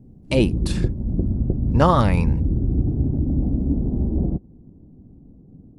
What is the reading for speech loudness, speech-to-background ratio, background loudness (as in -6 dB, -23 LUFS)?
-21.0 LUFS, 2.5 dB, -23.5 LUFS